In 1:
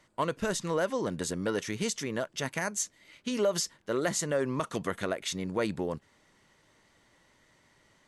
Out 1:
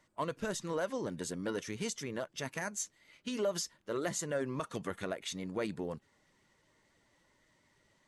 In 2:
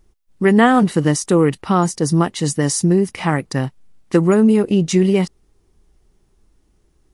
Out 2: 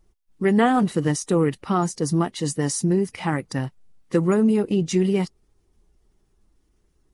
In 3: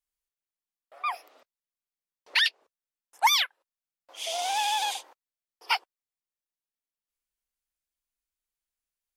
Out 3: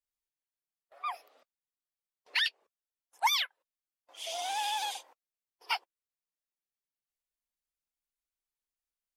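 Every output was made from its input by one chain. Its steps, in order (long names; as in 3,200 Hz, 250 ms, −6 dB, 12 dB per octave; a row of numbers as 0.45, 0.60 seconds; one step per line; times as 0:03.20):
spectral magnitudes quantised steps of 15 dB
level −5.5 dB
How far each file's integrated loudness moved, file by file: −6.0, −6.0, −6.0 LU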